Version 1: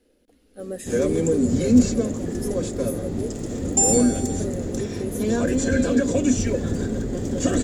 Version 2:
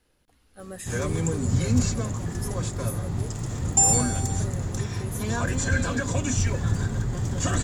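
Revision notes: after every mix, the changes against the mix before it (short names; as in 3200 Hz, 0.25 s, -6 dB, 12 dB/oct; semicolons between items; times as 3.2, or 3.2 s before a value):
master: add ten-band EQ 125 Hz +9 dB, 250 Hz -11 dB, 500 Hz -11 dB, 1000 Hz +9 dB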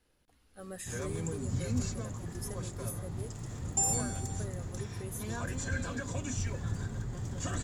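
speech -4.5 dB; background -10.5 dB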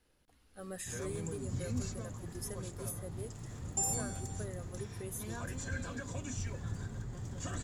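background -4.5 dB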